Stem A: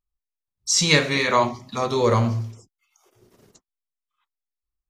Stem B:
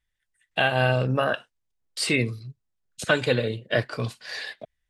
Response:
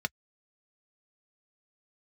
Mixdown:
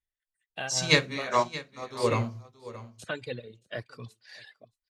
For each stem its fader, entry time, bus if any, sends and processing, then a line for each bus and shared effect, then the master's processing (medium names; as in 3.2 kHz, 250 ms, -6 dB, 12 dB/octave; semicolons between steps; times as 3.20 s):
-2.0 dB, 0.00 s, no send, echo send -16 dB, hum notches 50/100/150/200/250/300/350/400 Hz; upward expansion 2.5:1, over -31 dBFS
-13.0 dB, 0.00 s, no send, echo send -23.5 dB, reverb removal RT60 1.7 s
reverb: none
echo: delay 625 ms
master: none